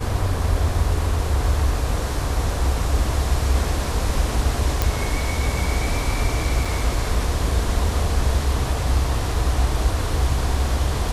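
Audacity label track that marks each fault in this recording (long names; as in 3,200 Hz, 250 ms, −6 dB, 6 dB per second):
4.820000	4.820000	click
6.650000	6.650000	drop-out 4.4 ms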